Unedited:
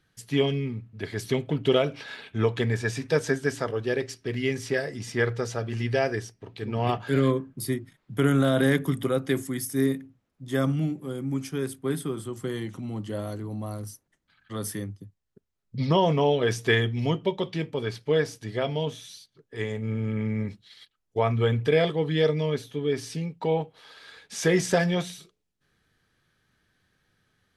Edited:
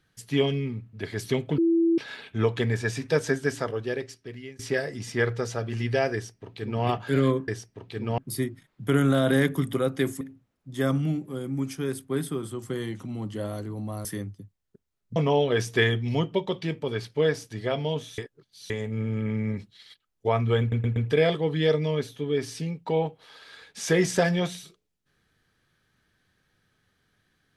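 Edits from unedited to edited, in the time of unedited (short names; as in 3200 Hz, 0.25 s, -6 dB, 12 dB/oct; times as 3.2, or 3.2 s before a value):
1.58–1.98 bleep 333 Hz -18 dBFS
3.6–4.59 fade out, to -22.5 dB
6.14–6.84 copy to 7.48
9.51–9.95 cut
13.79–14.67 cut
15.78–16.07 cut
19.09–19.61 reverse
21.51 stutter 0.12 s, 4 plays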